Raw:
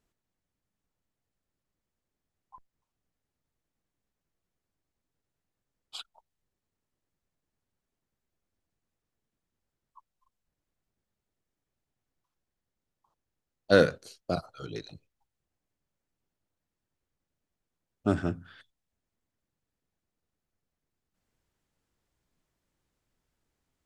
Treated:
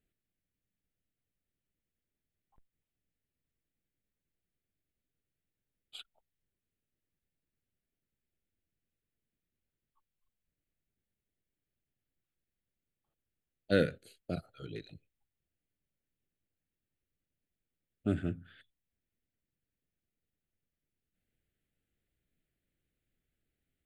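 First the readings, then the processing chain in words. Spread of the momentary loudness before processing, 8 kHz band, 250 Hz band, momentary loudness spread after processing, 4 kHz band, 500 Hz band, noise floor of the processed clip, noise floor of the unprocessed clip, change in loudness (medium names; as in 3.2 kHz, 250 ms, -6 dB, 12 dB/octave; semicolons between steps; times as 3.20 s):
21 LU, under -10 dB, -4.5 dB, 20 LU, -7.5 dB, -8.0 dB, under -85 dBFS, under -85 dBFS, -7.0 dB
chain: static phaser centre 2.4 kHz, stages 4; dynamic bell 810 Hz, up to -3 dB, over -41 dBFS, Q 0.77; trim -3 dB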